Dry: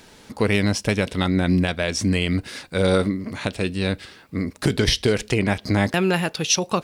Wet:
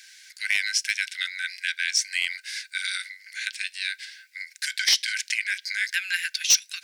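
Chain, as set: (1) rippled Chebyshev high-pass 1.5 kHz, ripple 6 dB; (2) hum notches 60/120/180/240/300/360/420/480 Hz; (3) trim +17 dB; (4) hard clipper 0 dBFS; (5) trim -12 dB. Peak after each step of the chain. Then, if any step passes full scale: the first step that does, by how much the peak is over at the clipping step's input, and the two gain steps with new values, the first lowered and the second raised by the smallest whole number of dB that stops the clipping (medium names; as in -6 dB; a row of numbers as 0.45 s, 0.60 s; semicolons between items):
-8.5 dBFS, -8.5 dBFS, +8.5 dBFS, 0.0 dBFS, -12.0 dBFS; step 3, 8.5 dB; step 3 +8 dB, step 5 -3 dB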